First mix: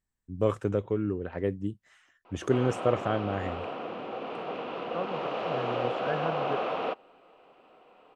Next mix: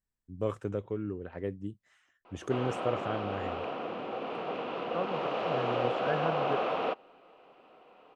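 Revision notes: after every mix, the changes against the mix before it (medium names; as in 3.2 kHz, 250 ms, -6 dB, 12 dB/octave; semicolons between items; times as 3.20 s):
first voice -6.0 dB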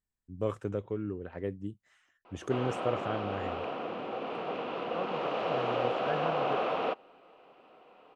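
second voice -3.5 dB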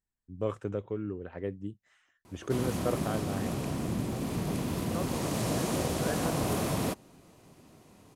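background: remove cabinet simulation 460–3100 Hz, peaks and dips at 490 Hz +9 dB, 760 Hz +7 dB, 1.3 kHz +8 dB, 1.9 kHz -4 dB, 2.8 kHz +7 dB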